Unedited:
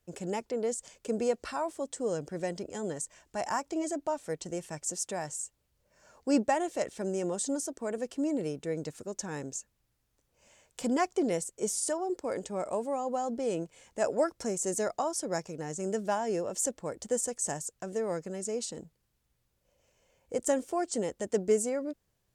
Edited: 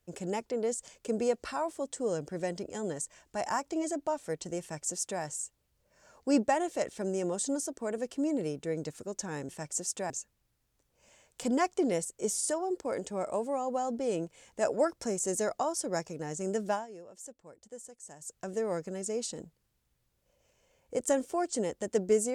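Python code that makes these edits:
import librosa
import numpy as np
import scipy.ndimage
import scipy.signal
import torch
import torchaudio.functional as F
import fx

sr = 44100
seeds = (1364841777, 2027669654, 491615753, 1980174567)

y = fx.edit(x, sr, fx.duplicate(start_s=4.61, length_s=0.61, to_s=9.49),
    fx.fade_down_up(start_s=16.1, length_s=1.64, db=-16.0, fade_s=0.16), tone=tone)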